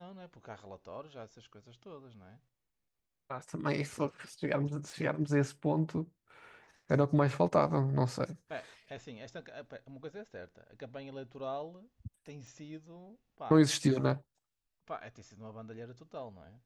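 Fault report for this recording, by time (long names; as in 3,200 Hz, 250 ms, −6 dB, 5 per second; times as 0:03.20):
0:04.90: click
0:12.47: click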